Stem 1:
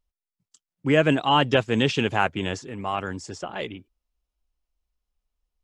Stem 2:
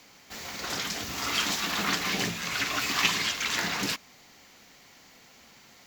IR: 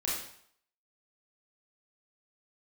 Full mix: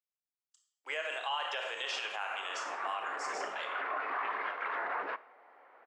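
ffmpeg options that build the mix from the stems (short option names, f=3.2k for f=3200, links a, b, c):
-filter_complex "[0:a]agate=range=-6dB:threshold=-41dB:ratio=16:detection=peak,highpass=790,volume=-9.5dB,asplit=3[a][b][c];[b]volume=-5dB[d];[1:a]lowpass=f=1.5k:w=0.5412,lowpass=f=1.5k:w=1.3066,alimiter=level_in=4dB:limit=-24dB:level=0:latency=1:release=18,volume=-4dB,adelay=1200,volume=2.5dB,asplit=2[e][f];[f]volume=-23dB[g];[c]apad=whole_len=311505[h];[e][h]sidechaincompress=threshold=-37dB:ratio=8:attack=9.2:release=793[i];[2:a]atrim=start_sample=2205[j];[d][g]amix=inputs=2:normalize=0[k];[k][j]afir=irnorm=-1:irlink=0[l];[a][i][l]amix=inputs=3:normalize=0,highpass=f=470:w=0.5412,highpass=f=470:w=1.3066,alimiter=level_in=1.5dB:limit=-24dB:level=0:latency=1:release=88,volume=-1.5dB"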